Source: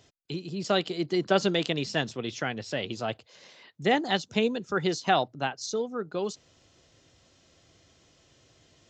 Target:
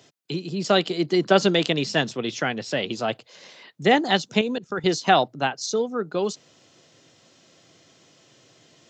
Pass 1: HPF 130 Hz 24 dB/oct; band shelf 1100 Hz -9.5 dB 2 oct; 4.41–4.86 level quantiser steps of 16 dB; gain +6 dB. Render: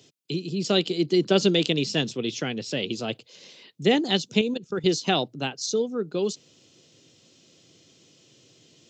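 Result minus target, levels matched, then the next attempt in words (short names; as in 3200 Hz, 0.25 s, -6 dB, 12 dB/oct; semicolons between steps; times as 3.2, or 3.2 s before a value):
1000 Hz band -7.5 dB
HPF 130 Hz 24 dB/oct; 4.41–4.86 level quantiser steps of 16 dB; gain +6 dB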